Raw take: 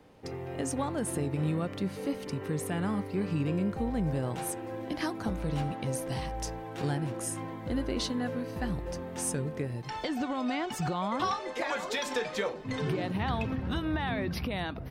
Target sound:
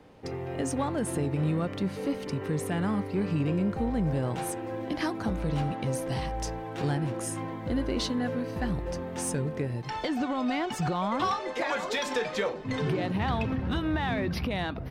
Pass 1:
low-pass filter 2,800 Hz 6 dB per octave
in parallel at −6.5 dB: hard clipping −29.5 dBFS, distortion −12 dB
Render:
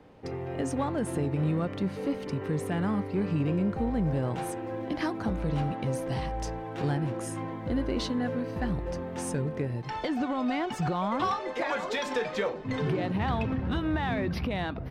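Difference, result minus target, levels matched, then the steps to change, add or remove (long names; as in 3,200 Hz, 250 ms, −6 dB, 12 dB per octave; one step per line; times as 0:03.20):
8,000 Hz band −5.0 dB
change: low-pass filter 6,500 Hz 6 dB per octave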